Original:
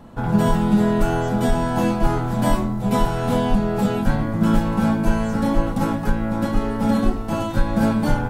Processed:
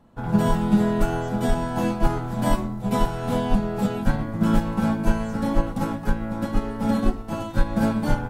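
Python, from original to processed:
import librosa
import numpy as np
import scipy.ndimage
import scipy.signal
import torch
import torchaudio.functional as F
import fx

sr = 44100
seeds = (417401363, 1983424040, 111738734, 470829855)

y = fx.upward_expand(x, sr, threshold_db=-36.0, expansion=1.5)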